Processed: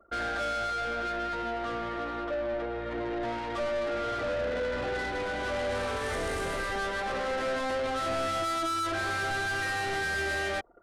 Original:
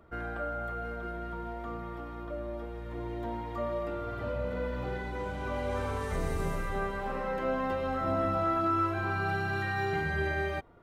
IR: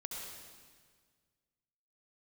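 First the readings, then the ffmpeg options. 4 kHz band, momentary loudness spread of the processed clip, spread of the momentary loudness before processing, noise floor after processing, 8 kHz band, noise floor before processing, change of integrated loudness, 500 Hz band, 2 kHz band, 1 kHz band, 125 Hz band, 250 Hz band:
+11.5 dB, 4 LU, 10 LU, -35 dBFS, +12.5 dB, -40 dBFS, +2.0 dB, +2.5 dB, +5.0 dB, +2.0 dB, -6.5 dB, -1.5 dB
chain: -filter_complex "[0:a]asplit=2[s0][s1];[s1]highpass=f=720:p=1,volume=28.2,asoftclip=type=tanh:threshold=0.126[s2];[s0][s2]amix=inputs=2:normalize=0,lowpass=f=2800:p=1,volume=0.501,anlmdn=10,equalizer=f=160:t=o:w=0.67:g=-9,equalizer=f=400:t=o:w=0.67:g=-3,equalizer=f=1000:t=o:w=0.67:g=-9,equalizer=f=2500:t=o:w=0.67:g=-4,equalizer=f=10000:t=o:w=0.67:g=8,volume=0.75"

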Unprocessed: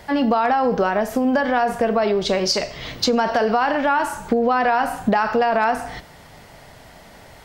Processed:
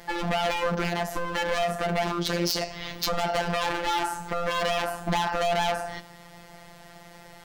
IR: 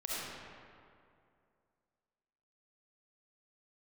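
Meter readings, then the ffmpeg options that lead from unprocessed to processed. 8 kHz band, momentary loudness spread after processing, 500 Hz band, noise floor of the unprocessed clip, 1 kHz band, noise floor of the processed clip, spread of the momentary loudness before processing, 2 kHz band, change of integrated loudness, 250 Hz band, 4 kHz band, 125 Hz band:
-3.0 dB, 5 LU, -8.5 dB, -45 dBFS, -8.0 dB, -49 dBFS, 4 LU, -6.0 dB, -7.5 dB, -11.5 dB, -2.5 dB, +0.5 dB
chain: -af "aeval=exprs='0.133*(abs(mod(val(0)/0.133+3,4)-2)-1)':c=same,afftfilt=real='hypot(re,im)*cos(PI*b)':imag='0':win_size=1024:overlap=0.75"

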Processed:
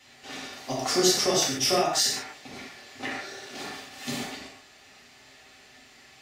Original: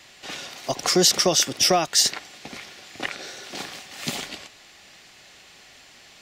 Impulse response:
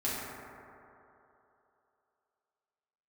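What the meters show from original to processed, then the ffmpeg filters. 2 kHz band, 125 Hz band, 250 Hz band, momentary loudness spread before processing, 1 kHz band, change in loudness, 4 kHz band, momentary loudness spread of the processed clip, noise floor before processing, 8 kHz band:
-3.0 dB, -4.5 dB, -2.0 dB, 21 LU, -2.5 dB, -5.5 dB, -5.0 dB, 20 LU, -50 dBFS, -5.0 dB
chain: -filter_complex "[1:a]atrim=start_sample=2205,afade=t=out:st=0.21:d=0.01,atrim=end_sample=9702[s0];[0:a][s0]afir=irnorm=-1:irlink=0,volume=0.398"

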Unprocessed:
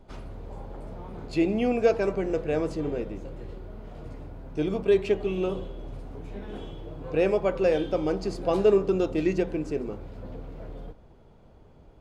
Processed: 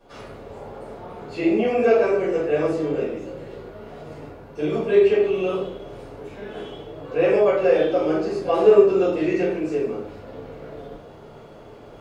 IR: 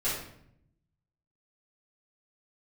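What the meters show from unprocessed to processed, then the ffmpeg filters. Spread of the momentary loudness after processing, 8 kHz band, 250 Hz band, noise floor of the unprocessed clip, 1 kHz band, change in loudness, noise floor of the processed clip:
21 LU, no reading, +3.5 dB, -53 dBFS, +6.5 dB, +6.0 dB, -43 dBFS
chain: -filter_complex "[0:a]acrossover=split=3000[s0][s1];[s1]acompressor=threshold=0.00251:ratio=4:attack=1:release=60[s2];[s0][s2]amix=inputs=2:normalize=0,highpass=f=430:p=1,areverse,acompressor=mode=upward:threshold=0.00794:ratio=2.5,areverse[s3];[1:a]atrim=start_sample=2205,afade=t=out:st=0.22:d=0.01,atrim=end_sample=10143[s4];[s3][s4]afir=irnorm=-1:irlink=0"

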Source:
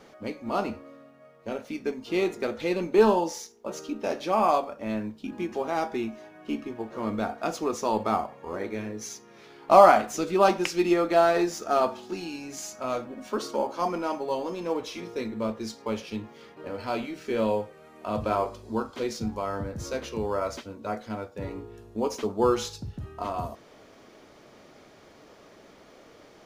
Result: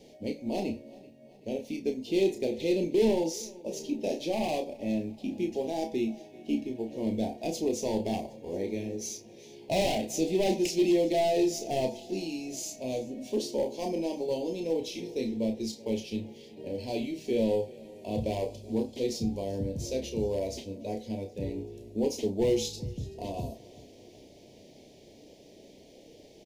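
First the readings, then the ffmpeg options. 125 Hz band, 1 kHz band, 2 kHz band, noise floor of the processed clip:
+0.5 dB, -13.0 dB, -8.5 dB, -54 dBFS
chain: -filter_complex "[0:a]volume=10.6,asoftclip=hard,volume=0.0944,asuperstop=centerf=1300:order=4:qfactor=0.61,asplit=2[s0][s1];[s1]adelay=31,volume=0.447[s2];[s0][s2]amix=inputs=2:normalize=0,asplit=2[s3][s4];[s4]aecho=0:1:383|766|1149|1532:0.0794|0.0461|0.0267|0.0155[s5];[s3][s5]amix=inputs=2:normalize=0"

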